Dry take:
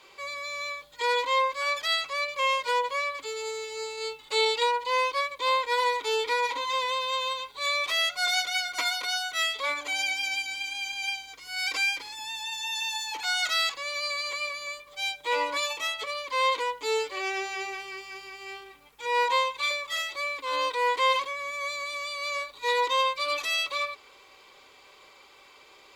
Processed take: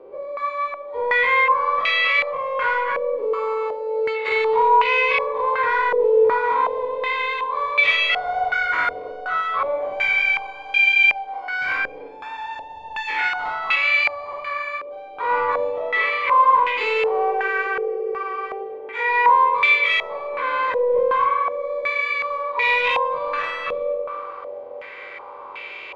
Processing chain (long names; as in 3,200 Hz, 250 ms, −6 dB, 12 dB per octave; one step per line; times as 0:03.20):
every bin's largest magnitude spread in time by 120 ms
low-shelf EQ 320 Hz −5.5 dB
mains-hum notches 50/100/150 Hz
in parallel at +1 dB: downward compressor, threshold −35 dBFS, peak gain reduction 15.5 dB
on the sum: soft clipping −20 dBFS, distortion −14 dB
on a send: feedback echo with a band-pass in the loop 283 ms, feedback 84%, band-pass 400 Hz, level −11.5 dB
on the sum: spring reverb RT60 1.3 s, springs 43 ms, chirp 80 ms, DRR 4 dB
low-pass on a step sequencer 2.7 Hz 510–2,500 Hz